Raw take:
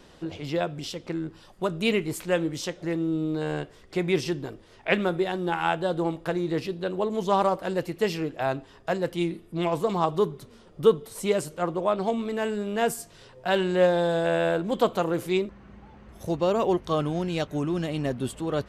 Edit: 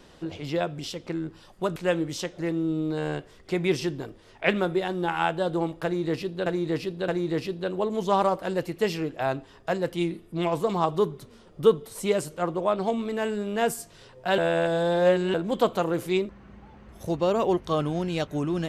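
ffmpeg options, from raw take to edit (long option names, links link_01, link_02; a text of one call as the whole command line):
ffmpeg -i in.wav -filter_complex "[0:a]asplit=6[link_01][link_02][link_03][link_04][link_05][link_06];[link_01]atrim=end=1.762[link_07];[link_02]atrim=start=2.198:end=6.902[link_08];[link_03]atrim=start=6.278:end=6.902[link_09];[link_04]atrim=start=6.278:end=13.582[link_10];[link_05]atrim=start=13.578:end=14.542,asetpts=PTS-STARTPTS,areverse[link_11];[link_06]atrim=start=14.538[link_12];[link_07][link_08]acrossfade=duration=0.004:curve1=hsin:curve2=hsin[link_13];[link_13][link_09]acrossfade=duration=0.004:curve1=hsin:curve2=hsin[link_14];[link_14][link_10]acrossfade=duration=0.004:curve1=hsin:curve2=hsin[link_15];[link_15][link_11]acrossfade=duration=0.004:curve1=hsin:curve2=hsin[link_16];[link_16][link_12]acrossfade=duration=0.004:curve1=hsin:curve2=hsin" out.wav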